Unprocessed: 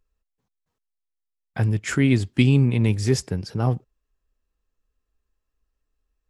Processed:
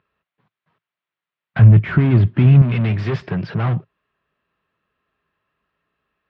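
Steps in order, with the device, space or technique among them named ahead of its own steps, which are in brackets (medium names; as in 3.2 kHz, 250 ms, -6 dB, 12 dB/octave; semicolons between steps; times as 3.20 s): overdrive pedal into a guitar cabinet (overdrive pedal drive 35 dB, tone 1.5 kHz, clips at -4.5 dBFS; cabinet simulation 86–3500 Hz, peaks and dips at 110 Hz +7 dB, 160 Hz +9 dB, 280 Hz -6 dB, 480 Hz -8 dB, 810 Hz -6 dB); 1.59–2.62 s: tilt EQ -3 dB/octave; trim -7.5 dB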